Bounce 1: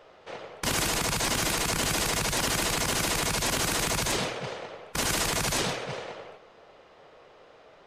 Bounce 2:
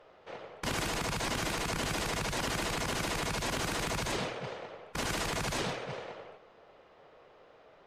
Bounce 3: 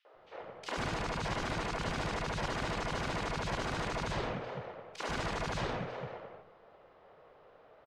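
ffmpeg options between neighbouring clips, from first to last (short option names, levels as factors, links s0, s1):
-af "aemphasis=mode=reproduction:type=cd,volume=0.596"
-filter_complex "[0:a]acrossover=split=300|2600[s0][s1][s2];[s1]adelay=50[s3];[s0]adelay=140[s4];[s4][s3][s2]amix=inputs=3:normalize=0,adynamicsmooth=sensitivity=1.5:basefreq=4100"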